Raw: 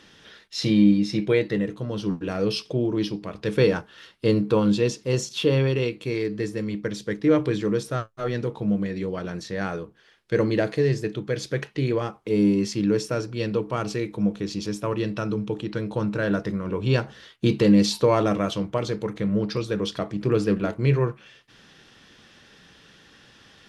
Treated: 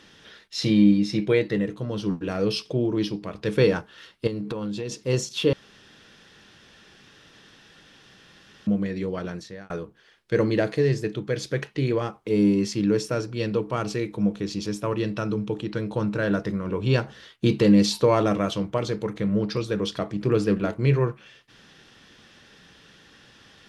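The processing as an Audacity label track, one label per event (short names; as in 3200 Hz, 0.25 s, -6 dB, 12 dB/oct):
4.270000	4.920000	compressor 16:1, threshold -26 dBFS
5.530000	8.670000	room tone
9.260000	9.700000	fade out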